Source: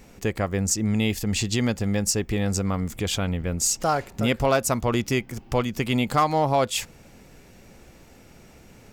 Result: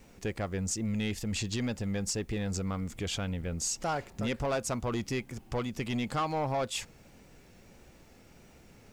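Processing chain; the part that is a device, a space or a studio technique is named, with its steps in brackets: compact cassette (saturation -18 dBFS, distortion -13 dB; low-pass 9.3 kHz 12 dB/octave; wow and flutter; white noise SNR 38 dB); trim -6.5 dB

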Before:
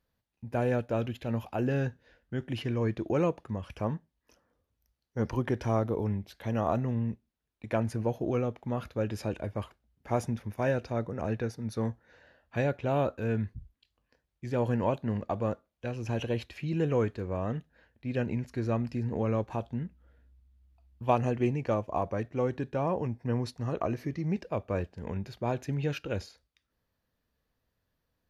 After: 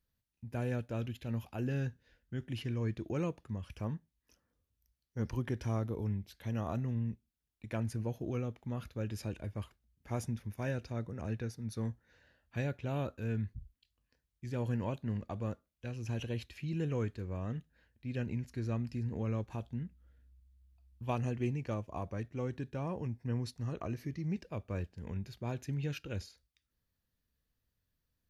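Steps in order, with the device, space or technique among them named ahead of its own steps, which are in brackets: smiley-face EQ (bass shelf 120 Hz +5 dB; peaking EQ 700 Hz -7 dB 1.9 oct; treble shelf 5.5 kHz +5.5 dB); trim -5.5 dB

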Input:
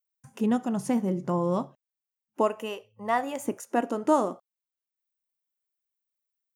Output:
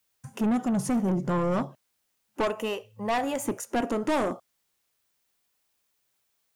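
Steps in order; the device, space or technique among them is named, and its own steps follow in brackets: open-reel tape (saturation -27.5 dBFS, distortion -7 dB; peaking EQ 110 Hz +4.5 dB 0.98 oct; white noise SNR 46 dB); trim +5.5 dB

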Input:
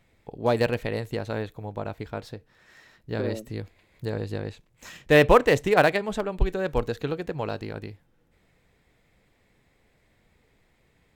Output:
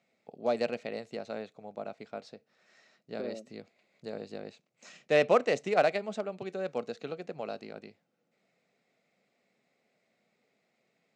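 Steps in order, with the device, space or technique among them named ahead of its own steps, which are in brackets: television speaker (cabinet simulation 200–7100 Hz, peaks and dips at 310 Hz -9 dB, 450 Hz -3 dB, 660 Hz +4 dB, 960 Hz -10 dB, 1.7 kHz -8 dB, 3.3 kHz -6 dB); trim -5 dB

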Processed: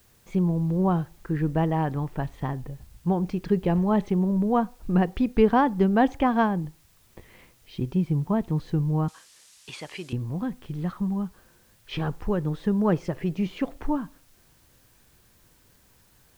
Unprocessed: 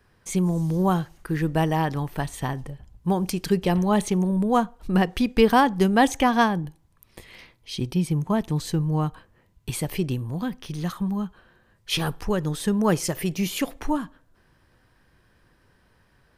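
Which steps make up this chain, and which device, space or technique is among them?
cassette deck with a dirty head (tape spacing loss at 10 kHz 36 dB; wow and flutter; white noise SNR 36 dB); 9.08–10.13 s: frequency weighting ITU-R 468

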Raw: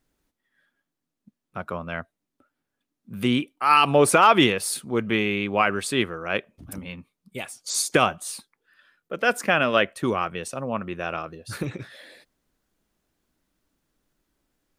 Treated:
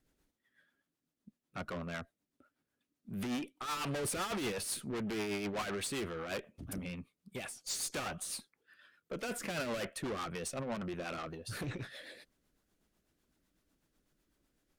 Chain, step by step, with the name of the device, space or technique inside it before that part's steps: overdriven rotary cabinet (valve stage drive 33 dB, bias 0.25; rotary cabinet horn 8 Hz)

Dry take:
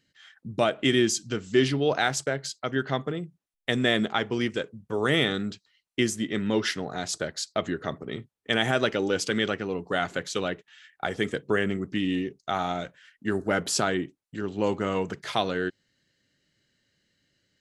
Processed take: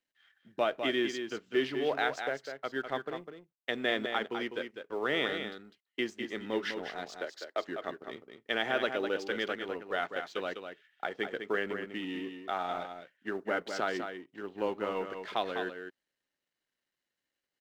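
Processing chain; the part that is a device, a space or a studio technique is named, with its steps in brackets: 7.19–7.68 s: steep high-pass 270 Hz 36 dB/octave; phone line with mismatched companding (band-pass 340–3600 Hz; companding laws mixed up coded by A); treble shelf 6.9 kHz -6 dB; delay 202 ms -7.5 dB; trim -4.5 dB

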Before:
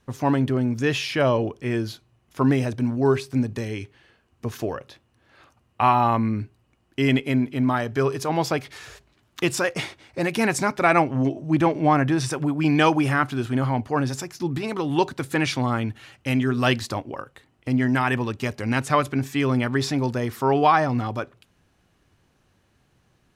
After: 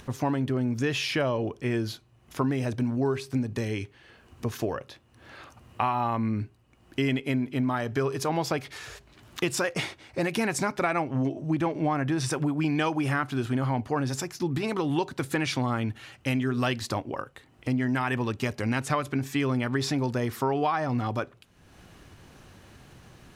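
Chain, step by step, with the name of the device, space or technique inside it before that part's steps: upward and downward compression (upward compressor, threshold -38 dBFS; compression, threshold -23 dBFS, peak gain reduction 10.5 dB)

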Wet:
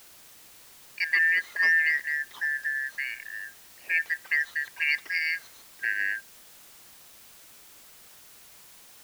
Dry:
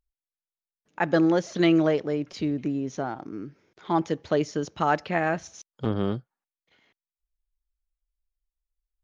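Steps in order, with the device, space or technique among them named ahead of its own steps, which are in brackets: split-band scrambled radio (four frequency bands reordered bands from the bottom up 3142; band-pass 400–3200 Hz; white noise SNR 21 dB); trim -2 dB

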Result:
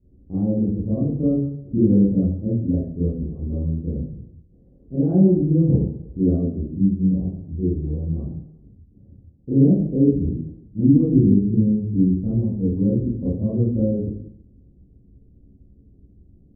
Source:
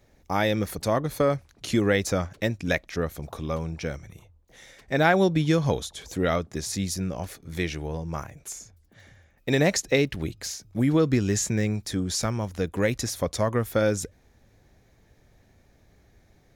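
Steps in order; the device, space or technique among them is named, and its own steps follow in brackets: next room (low-pass 320 Hz 24 dB/octave; reverberation RT60 0.75 s, pre-delay 24 ms, DRR -10.5 dB)

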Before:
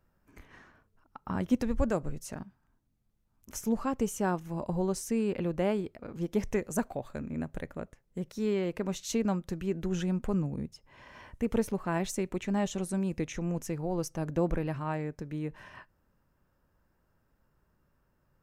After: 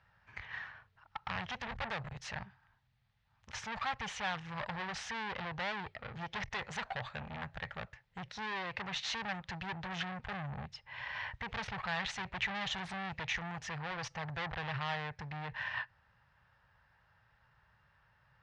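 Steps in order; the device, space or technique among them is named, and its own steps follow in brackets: 11.48–13.09 s: bass shelf 440 Hz +5 dB; scooped metal amplifier (valve stage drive 41 dB, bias 0.55; cabinet simulation 83–4000 Hz, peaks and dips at 120 Hz +7 dB, 830 Hz +7 dB, 1.8 kHz +6 dB; amplifier tone stack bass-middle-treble 10-0-10); trim +16.5 dB

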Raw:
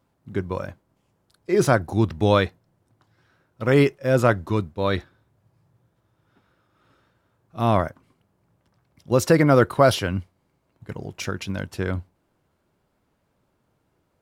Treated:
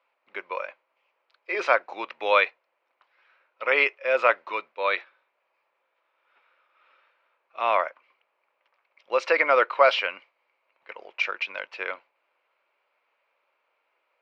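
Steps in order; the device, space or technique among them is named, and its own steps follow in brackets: high-pass 810 Hz 12 dB/octave; phone earpiece (cabinet simulation 490–3600 Hz, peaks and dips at 530 Hz +5 dB, 750 Hz -4 dB, 1.6 kHz -4 dB, 2.4 kHz +9 dB, 3.5 kHz -5 dB); trim +4 dB

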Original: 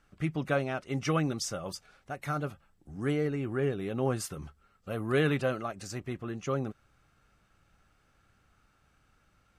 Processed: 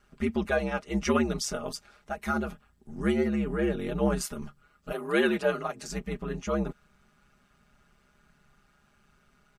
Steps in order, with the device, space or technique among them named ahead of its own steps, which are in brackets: 4.91–5.87 s: high-pass 340 Hz -> 160 Hz 24 dB/octave; ring-modulated robot voice (ring modulator 70 Hz; comb 4.9 ms); trim +4.5 dB

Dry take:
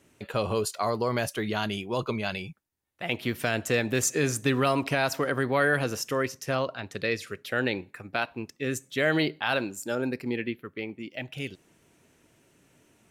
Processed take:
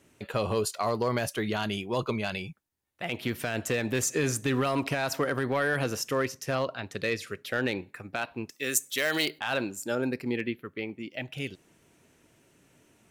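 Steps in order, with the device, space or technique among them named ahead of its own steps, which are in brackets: limiter into clipper (peak limiter -16.5 dBFS, peak gain reduction 4.5 dB; hard clipper -19 dBFS, distortion -24 dB); 8.50–9.39 s: RIAA curve recording

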